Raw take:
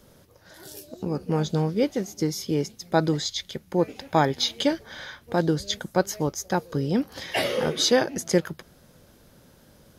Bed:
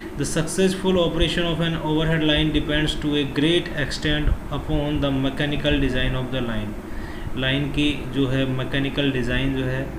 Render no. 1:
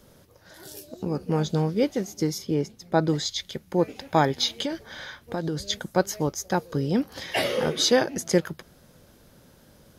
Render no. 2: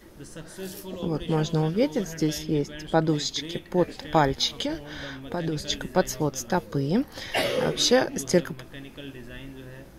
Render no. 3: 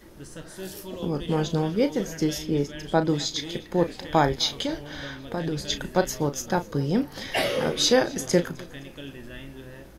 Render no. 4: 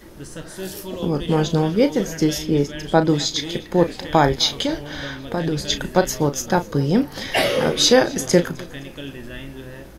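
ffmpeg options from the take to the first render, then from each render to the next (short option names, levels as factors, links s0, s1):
-filter_complex "[0:a]asettb=1/sr,asplit=3[s0][s1][s2];[s0]atrim=end=2.384[s3];[s1]atrim=start=2.38:end=3.09,asetpts=PTS-STARTPTS,afade=t=in:d=0.004:c=qsin,afade=t=out:st=0.706:d=0.004:c=qsin,highshelf=f=2500:g=-7.5[s4];[s2]atrim=start=3.086[s5];[s3][s4]acrossfade=d=0.004:c1=hsin:c2=qsin[s6];[s6][s5]acrossfade=d=0.004:c1=qsin:c2=hsin,asettb=1/sr,asplit=3[s7][s8][s9];[s7]atrim=end=4.604[s10];[s8]atrim=start=4.6:end=5.59,asetpts=PTS-STARTPTS,afade=t=in:d=0.004:c=qsin,afade=t=out:st=0.986:d=0.004:c=qsin,acompressor=threshold=0.0631:ratio=6:attack=3.2:release=140:knee=1:detection=peak[s11];[s9]atrim=start=5.586[s12];[s10][s11]acrossfade=d=0.004:c1=hsin:c2=qsin[s13];[s13][s12]acrossfade=d=0.004:c1=qsin:c2=hsin"
-filter_complex "[1:a]volume=0.119[s0];[0:a][s0]amix=inputs=2:normalize=0"
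-filter_complex "[0:a]asplit=2[s0][s1];[s1]adelay=35,volume=0.282[s2];[s0][s2]amix=inputs=2:normalize=0,aecho=1:1:258|516|774:0.0668|0.0348|0.0181"
-af "volume=2,alimiter=limit=0.708:level=0:latency=1"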